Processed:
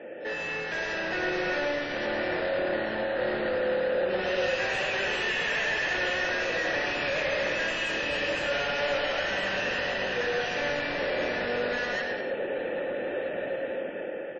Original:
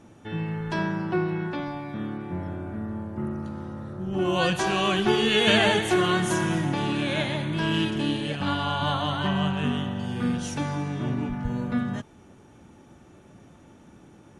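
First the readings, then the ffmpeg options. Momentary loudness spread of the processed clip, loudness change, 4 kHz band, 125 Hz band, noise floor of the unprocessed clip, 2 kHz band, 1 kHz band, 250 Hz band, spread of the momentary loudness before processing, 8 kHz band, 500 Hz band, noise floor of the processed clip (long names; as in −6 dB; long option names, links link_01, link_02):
5 LU, −2.0 dB, −4.0 dB, −16.5 dB, −52 dBFS, +3.5 dB, −4.0 dB, −11.0 dB, 12 LU, −6.0 dB, +1.5 dB, −35 dBFS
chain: -filter_complex "[0:a]highshelf=frequency=5800:gain=-11.5,bandreject=frequency=3700:width=6.3,acrossover=split=760[link_01][link_02];[link_01]acompressor=threshold=-37dB:ratio=8[link_03];[link_03][link_02]amix=inputs=2:normalize=0,alimiter=limit=-22.5dB:level=0:latency=1:release=32,dynaudnorm=framelen=350:gausssize=7:maxgain=11.5dB,aresample=16000,aeval=exprs='clip(val(0),-1,0.0355)':channel_layout=same,aresample=44100,asplit=3[link_04][link_05][link_06];[link_04]bandpass=frequency=530:width_type=q:width=8,volume=0dB[link_07];[link_05]bandpass=frequency=1840:width_type=q:width=8,volume=-6dB[link_08];[link_06]bandpass=frequency=2480:width_type=q:width=8,volume=-9dB[link_09];[link_07][link_08][link_09]amix=inputs=3:normalize=0,asplit=2[link_10][link_11];[link_11]highpass=frequency=720:poles=1,volume=36dB,asoftclip=type=tanh:threshold=-22.5dB[link_12];[link_10][link_12]amix=inputs=2:normalize=0,lowpass=frequency=2000:poles=1,volume=-6dB,aecho=1:1:110|192.5|254.4|300.8|335.6:0.631|0.398|0.251|0.158|0.1" -ar 48000 -c:a wmav2 -b:a 32k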